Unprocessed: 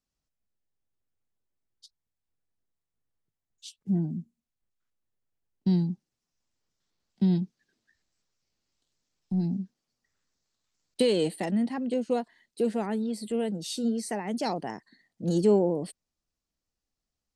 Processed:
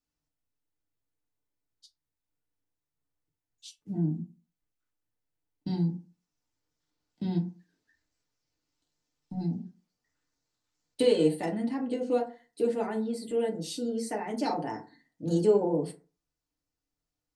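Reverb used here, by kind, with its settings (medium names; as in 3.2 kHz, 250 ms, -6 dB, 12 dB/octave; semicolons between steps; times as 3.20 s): FDN reverb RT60 0.35 s, low-frequency decay 1×, high-frequency decay 0.45×, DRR -1 dB; trim -4.5 dB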